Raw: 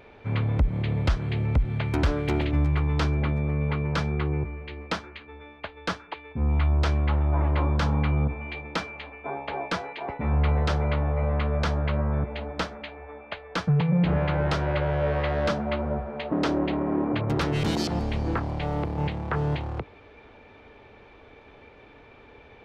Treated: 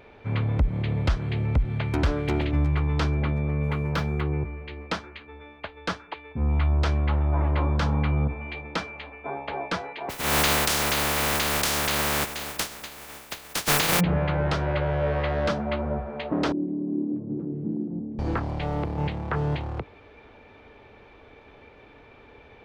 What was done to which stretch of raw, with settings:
3.63–4.21 s: median filter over 5 samples
7.57–9.36 s: short-mantissa float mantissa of 8-bit
10.09–13.99 s: spectral contrast reduction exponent 0.18
16.52–18.19 s: Butterworth band-pass 240 Hz, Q 1.4

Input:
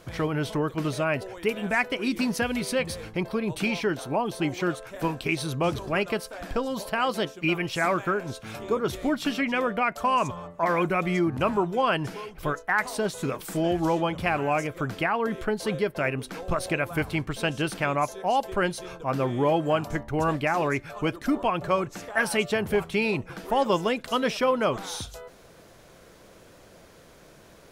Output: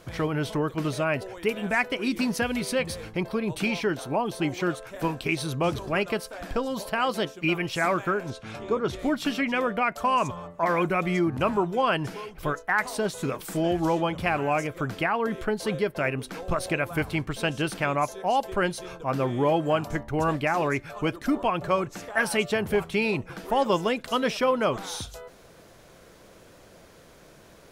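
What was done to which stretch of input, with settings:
8.30–8.99 s: distance through air 55 m

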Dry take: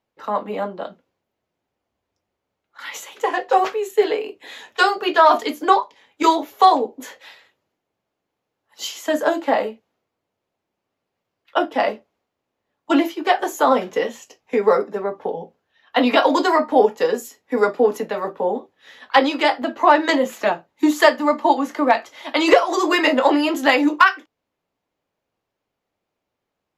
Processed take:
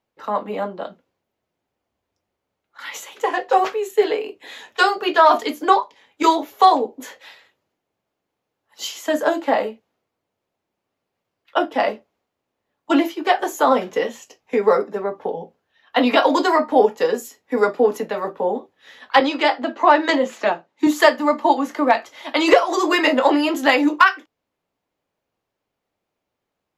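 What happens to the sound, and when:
19.20–20.87 s: band-pass 180–7100 Hz

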